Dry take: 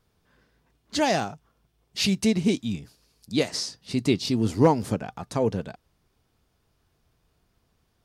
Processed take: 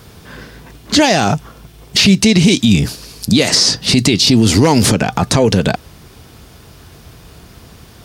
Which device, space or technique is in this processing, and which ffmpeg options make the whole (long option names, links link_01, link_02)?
mastering chain: -filter_complex "[0:a]highpass=48,equalizer=frequency=850:width_type=o:width=2.1:gain=-2.5,acrossover=split=2000|7500[link_01][link_02][link_03];[link_01]acompressor=threshold=-31dB:ratio=4[link_04];[link_02]acompressor=threshold=-34dB:ratio=4[link_05];[link_03]acompressor=threshold=-53dB:ratio=4[link_06];[link_04][link_05][link_06]amix=inputs=3:normalize=0,acompressor=threshold=-35dB:ratio=1.5,asoftclip=type=tanh:threshold=-19.5dB,alimiter=level_in=32dB:limit=-1dB:release=50:level=0:latency=1,volume=-1dB"